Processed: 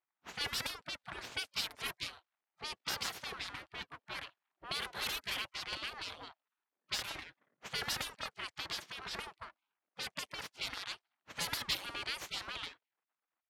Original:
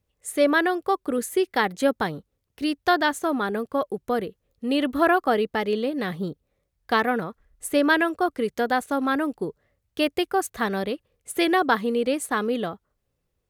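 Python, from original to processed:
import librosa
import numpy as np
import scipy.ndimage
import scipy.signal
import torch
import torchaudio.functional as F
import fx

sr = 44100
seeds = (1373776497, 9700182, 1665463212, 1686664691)

y = np.where(x < 0.0, 10.0 ** (-12.0 / 20.0) * x, x)
y = fx.spec_gate(y, sr, threshold_db=-25, keep='weak')
y = fx.env_lowpass(y, sr, base_hz=1600.0, full_db=-38.0)
y = F.gain(torch.from_numpy(y), 4.0).numpy()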